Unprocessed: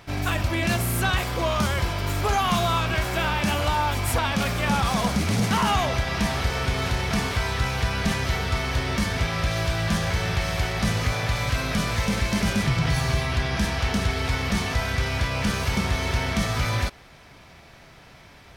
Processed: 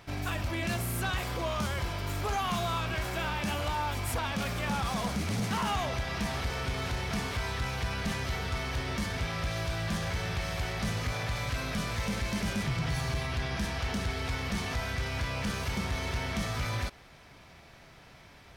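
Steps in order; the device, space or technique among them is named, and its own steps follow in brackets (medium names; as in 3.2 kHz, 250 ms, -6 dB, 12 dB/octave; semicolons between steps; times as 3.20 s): clipper into limiter (hard clipper -17.5 dBFS, distortion -20 dB; peak limiter -20.5 dBFS, peak gain reduction 3 dB); trim -5 dB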